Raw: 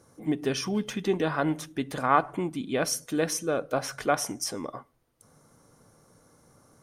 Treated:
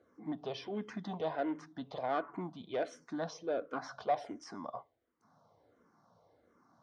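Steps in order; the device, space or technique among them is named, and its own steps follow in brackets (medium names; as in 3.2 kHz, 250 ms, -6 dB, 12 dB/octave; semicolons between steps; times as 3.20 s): barber-pole phaser into a guitar amplifier (barber-pole phaser -1.4 Hz; saturation -23 dBFS, distortion -14 dB; cabinet simulation 96–4400 Hz, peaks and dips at 140 Hz -8 dB, 690 Hz +8 dB, 1 kHz +5 dB, 2.6 kHz -7 dB); trim -6 dB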